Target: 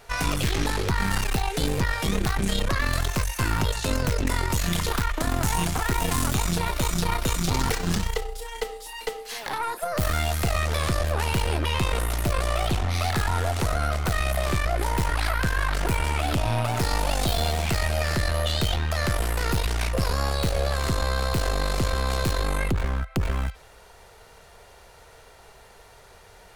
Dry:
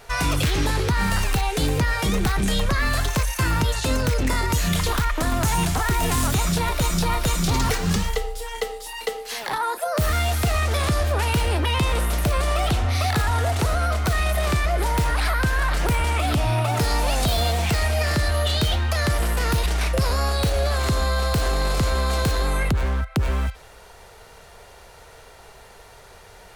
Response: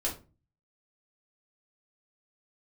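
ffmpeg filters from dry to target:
-af "aeval=exprs='0.2*(cos(1*acos(clip(val(0)/0.2,-1,1)))-cos(1*PI/2))+0.0708*(cos(2*acos(clip(val(0)/0.2,-1,1)))-cos(2*PI/2))':c=same,volume=-4dB"

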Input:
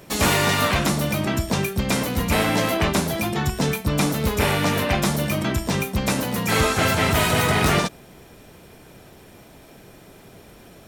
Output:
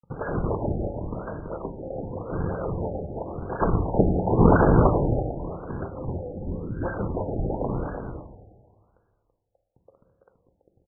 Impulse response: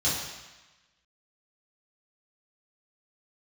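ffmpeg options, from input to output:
-filter_complex "[0:a]asplit=3[a][b][c];[a]afade=t=out:st=3.49:d=0.02[d];[b]highshelf=f=2k:t=q:w=3:g=13,afade=t=in:st=3.49:d=0.02,afade=t=out:st=4.88:d=0.02[e];[c]afade=t=in:st=4.88:d=0.02[f];[d][e][f]amix=inputs=3:normalize=0,acrossover=split=1200[g][h];[g]acompressor=threshold=-32dB:ratio=5[i];[i][h]amix=inputs=2:normalize=0,acrusher=bits=5:mix=0:aa=0.000001,asplit=3[j][k][l];[j]bandpass=f=530:t=q:w=8,volume=0dB[m];[k]bandpass=f=1.84k:t=q:w=8,volume=-6dB[n];[l]bandpass=f=2.48k:t=q:w=8,volume=-9dB[o];[m][n][o]amix=inputs=3:normalize=0,acrusher=samples=41:mix=1:aa=0.000001:lfo=1:lforange=65.6:lforate=3,asplit=3[p][q][r];[p]afade=t=out:st=6.31:d=0.02[s];[q]asuperstop=centerf=760:order=12:qfactor=0.71,afade=t=in:st=6.31:d=0.02,afade=t=out:st=6.82:d=0.02[t];[r]afade=t=in:st=6.82:d=0.02[u];[s][t][u]amix=inputs=3:normalize=0,asplit=2[v][w];[w]adelay=332.4,volume=-6dB,highshelf=f=4k:g=-7.48[x];[v][x]amix=inputs=2:normalize=0,asplit=2[y][z];[1:a]atrim=start_sample=2205,asetrate=27342,aresample=44100[aa];[z][aa]afir=irnorm=-1:irlink=0,volume=-20dB[ab];[y][ab]amix=inputs=2:normalize=0,afftfilt=real='re*lt(b*sr/1024,830*pow(1700/830,0.5+0.5*sin(2*PI*0.91*pts/sr)))':imag='im*lt(b*sr/1024,830*pow(1700/830,0.5+0.5*sin(2*PI*0.91*pts/sr)))':win_size=1024:overlap=0.75,volume=8dB"

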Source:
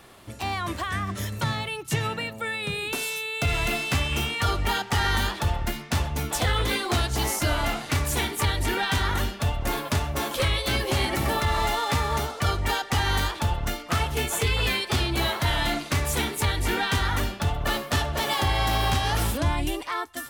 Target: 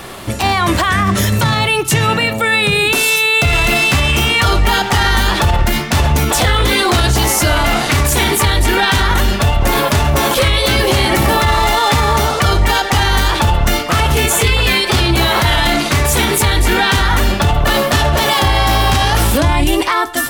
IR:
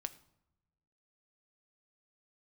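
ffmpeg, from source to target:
-filter_complex "[0:a]asplit=2[a][b];[1:a]atrim=start_sample=2205,atrim=end_sample=6615[c];[b][c]afir=irnorm=-1:irlink=0,volume=6dB[d];[a][d]amix=inputs=2:normalize=0,alimiter=level_in=15.5dB:limit=-1dB:release=50:level=0:latency=1,volume=-3.5dB"

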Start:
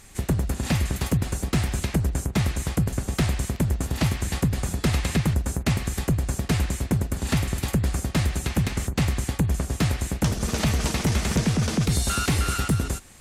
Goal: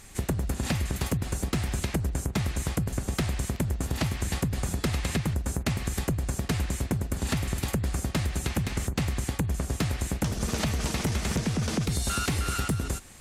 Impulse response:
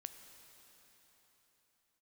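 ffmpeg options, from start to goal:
-af "acompressor=threshold=-24dB:ratio=6"

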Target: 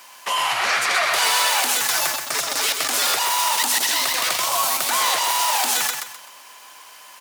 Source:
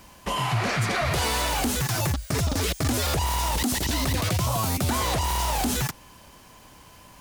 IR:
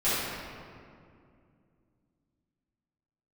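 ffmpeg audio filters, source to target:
-af "highpass=920,aecho=1:1:128|256|384|512:0.501|0.165|0.0546|0.018,volume=8dB"

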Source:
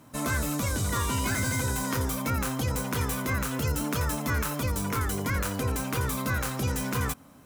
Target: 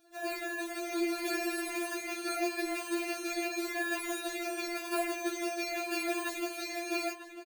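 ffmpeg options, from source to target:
-filter_complex "[0:a]afftfilt=real='re*pow(10,12/40*sin(2*PI*(0.54*log(max(b,1)*sr/1024/100)/log(2)-(-0.88)*(pts-256)/sr)))':imag='im*pow(10,12/40*sin(2*PI*(0.54*log(max(b,1)*sr/1024/100)/log(2)-(-0.88)*(pts-256)/sr)))':win_size=1024:overlap=0.75,acrusher=samples=22:mix=1:aa=0.000001,dynaudnorm=f=250:g=7:m=4dB,adynamicequalizer=threshold=0.00224:dfrequency=2400:dqfactor=4.9:tfrequency=2400:tqfactor=4.9:attack=5:release=100:ratio=0.375:range=4:mode=boostabove:tftype=bell,highpass=92,aecho=1:1:3.4:0.76,asplit=2[a][b];[b]adelay=947,lowpass=f=4k:p=1,volume=-11dB,asplit=2[c][d];[d]adelay=947,lowpass=f=4k:p=1,volume=0.24,asplit=2[e][f];[f]adelay=947,lowpass=f=4k:p=1,volume=0.24[g];[a][c][e][g]amix=inputs=4:normalize=0,afftfilt=real='re*4*eq(mod(b,16),0)':imag='im*4*eq(mod(b,16),0)':win_size=2048:overlap=0.75,volume=-6dB"

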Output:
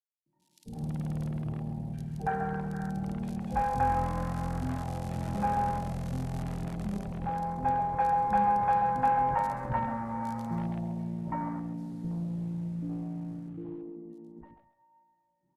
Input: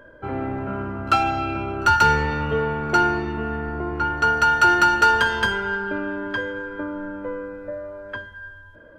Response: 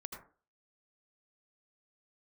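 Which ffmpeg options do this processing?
-filter_complex "[0:a]highpass=55,afwtdn=0.0447,equalizer=f=250:t=o:w=1:g=12,equalizer=f=4k:t=o:w=1:g=6,equalizer=f=8k:t=o:w=1:g=-7,dynaudnorm=f=750:g=5:m=14.5dB,acrossover=split=200|1100[a][b][c];[a]acrusher=bits=5:dc=4:mix=0:aa=0.000001[d];[b]asoftclip=type=tanh:threshold=-19dB[e];[d][e][c]amix=inputs=3:normalize=0,acrossover=split=740|5700[f][g][h];[f]adelay=150[i];[g]adelay=190[j];[i][j][h]amix=inputs=3:normalize=0[k];[1:a]atrim=start_sample=2205,atrim=end_sample=3528[l];[k][l]afir=irnorm=-1:irlink=0,asetrate=25442,aresample=44100,volume=-7.5dB" -ar 48000 -c:a libopus -b:a 48k

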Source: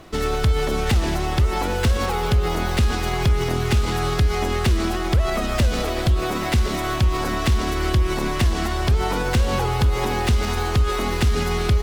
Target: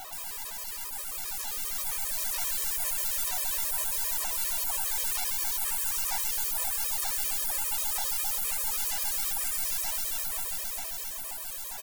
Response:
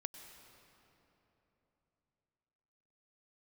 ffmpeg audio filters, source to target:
-filter_complex "[0:a]acrossover=split=6600[a][b];[b]acompressor=threshold=-49dB:ratio=4:attack=1:release=60[c];[a][c]amix=inputs=2:normalize=0,aemphasis=mode=production:type=riaa,afftfilt=real='re*lt(hypot(re,im),0.0251)':imag='im*lt(hypot(re,im),0.0251)':win_size=1024:overlap=0.75,highpass=f=770:t=q:w=4.9,highshelf=f=5.6k:g=5.5,asoftclip=type=tanh:threshold=-27.5dB,dynaudnorm=f=210:g=17:m=8dB,aeval=exprs='0.106*(cos(1*acos(clip(val(0)/0.106,-1,1)))-cos(1*PI/2))+0.000668*(cos(4*acos(clip(val(0)/0.106,-1,1)))-cos(4*PI/2))+0.000668*(cos(5*acos(clip(val(0)/0.106,-1,1)))-cos(5*PI/2))+0.015*(cos(6*acos(clip(val(0)/0.106,-1,1)))-cos(6*PI/2))+0.000668*(cos(8*acos(clip(val(0)/0.106,-1,1)))-cos(8*PI/2))':c=same,asplit=2[d][e];[e]adelay=231,lowpass=f=1.5k:p=1,volume=-14dB,asplit=2[f][g];[g]adelay=231,lowpass=f=1.5k:p=1,volume=0.16[h];[d][f][h]amix=inputs=3:normalize=0,afftfilt=real='re*gt(sin(2*PI*7.5*pts/sr)*(1-2*mod(floor(b*sr/1024/330),2)),0)':imag='im*gt(sin(2*PI*7.5*pts/sr)*(1-2*mod(floor(b*sr/1024/330),2)),0)':win_size=1024:overlap=0.75"

